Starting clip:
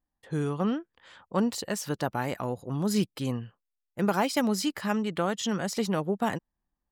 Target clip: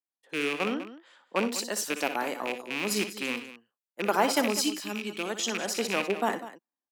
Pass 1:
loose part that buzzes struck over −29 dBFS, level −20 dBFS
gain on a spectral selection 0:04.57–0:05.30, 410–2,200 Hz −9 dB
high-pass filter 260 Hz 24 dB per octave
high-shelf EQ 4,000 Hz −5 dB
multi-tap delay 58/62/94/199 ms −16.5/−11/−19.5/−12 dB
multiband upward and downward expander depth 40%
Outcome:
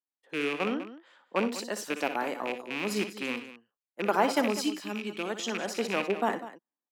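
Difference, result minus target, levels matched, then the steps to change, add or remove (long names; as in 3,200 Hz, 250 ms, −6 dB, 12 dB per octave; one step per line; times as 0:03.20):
8,000 Hz band −6.0 dB
change: high-shelf EQ 4,000 Hz +4 dB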